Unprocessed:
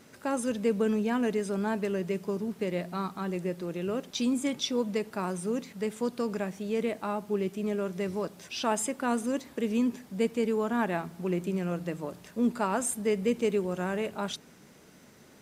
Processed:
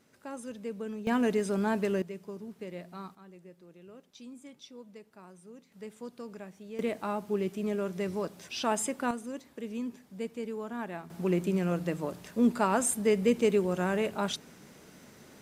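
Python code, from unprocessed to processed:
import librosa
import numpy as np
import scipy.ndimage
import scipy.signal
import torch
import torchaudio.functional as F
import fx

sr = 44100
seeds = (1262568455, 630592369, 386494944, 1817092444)

y = fx.gain(x, sr, db=fx.steps((0.0, -11.0), (1.07, 1.0), (2.02, -10.0), (3.15, -19.5), (5.72, -12.0), (6.79, -1.0), (9.11, -9.0), (11.1, 2.0)))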